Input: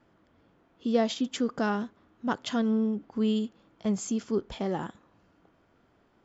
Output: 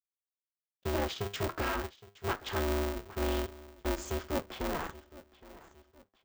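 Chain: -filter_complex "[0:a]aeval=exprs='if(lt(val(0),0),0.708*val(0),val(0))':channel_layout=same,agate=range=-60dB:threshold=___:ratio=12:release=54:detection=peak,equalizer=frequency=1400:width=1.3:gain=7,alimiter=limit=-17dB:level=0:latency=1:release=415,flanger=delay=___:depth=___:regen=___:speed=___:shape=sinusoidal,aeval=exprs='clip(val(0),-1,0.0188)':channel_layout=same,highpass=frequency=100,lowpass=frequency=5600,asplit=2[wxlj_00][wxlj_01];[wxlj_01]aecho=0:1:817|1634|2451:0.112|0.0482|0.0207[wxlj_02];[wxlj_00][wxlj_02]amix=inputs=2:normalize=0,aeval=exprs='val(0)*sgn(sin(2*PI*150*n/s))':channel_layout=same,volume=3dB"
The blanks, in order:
-54dB, 9.4, 4.6, -71, 0.42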